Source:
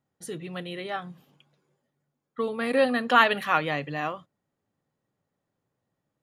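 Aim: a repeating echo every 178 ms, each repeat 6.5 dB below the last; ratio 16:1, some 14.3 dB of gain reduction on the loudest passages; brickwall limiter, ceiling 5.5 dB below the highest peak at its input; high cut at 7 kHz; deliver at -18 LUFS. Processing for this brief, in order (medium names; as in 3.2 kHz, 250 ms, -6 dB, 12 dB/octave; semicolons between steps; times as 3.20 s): low-pass 7 kHz; compression 16:1, threshold -27 dBFS; peak limiter -22.5 dBFS; feedback delay 178 ms, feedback 47%, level -6.5 dB; trim +16.5 dB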